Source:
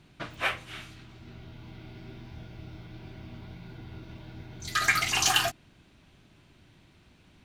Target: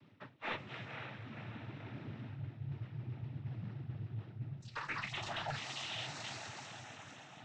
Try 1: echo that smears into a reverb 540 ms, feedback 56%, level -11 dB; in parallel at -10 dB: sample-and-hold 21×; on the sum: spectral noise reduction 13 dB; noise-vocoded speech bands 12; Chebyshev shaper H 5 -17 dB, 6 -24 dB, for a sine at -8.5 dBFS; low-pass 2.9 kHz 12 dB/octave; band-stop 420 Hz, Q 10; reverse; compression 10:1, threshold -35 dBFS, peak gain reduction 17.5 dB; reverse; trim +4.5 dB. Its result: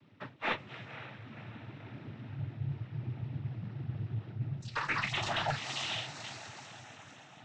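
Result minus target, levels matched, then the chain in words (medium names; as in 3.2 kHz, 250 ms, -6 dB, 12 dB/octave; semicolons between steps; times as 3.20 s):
compression: peak gain reduction -7.5 dB
echo that smears into a reverb 540 ms, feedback 56%, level -11 dB; in parallel at -10 dB: sample-and-hold 21×; on the sum: spectral noise reduction 13 dB; noise-vocoded speech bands 12; Chebyshev shaper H 5 -17 dB, 6 -24 dB, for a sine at -8.5 dBFS; low-pass 2.9 kHz 12 dB/octave; band-stop 420 Hz, Q 10; reverse; compression 10:1, threshold -43.5 dBFS, peak gain reduction 25 dB; reverse; trim +4.5 dB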